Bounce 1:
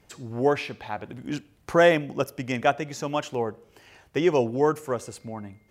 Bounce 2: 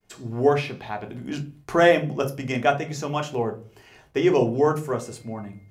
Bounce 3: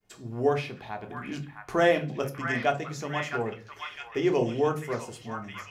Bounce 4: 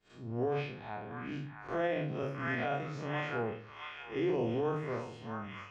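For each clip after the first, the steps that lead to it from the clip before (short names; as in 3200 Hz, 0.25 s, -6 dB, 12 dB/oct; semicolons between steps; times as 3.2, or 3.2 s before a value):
expander -53 dBFS; on a send at -4 dB: reverb RT60 0.30 s, pre-delay 3 ms
delay with a stepping band-pass 0.661 s, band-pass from 1500 Hz, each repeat 0.7 oct, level -1.5 dB; gain -5.5 dB
time blur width 0.102 s; limiter -22 dBFS, peak gain reduction 9.5 dB; LPF 3500 Hz 12 dB/oct; gain -2 dB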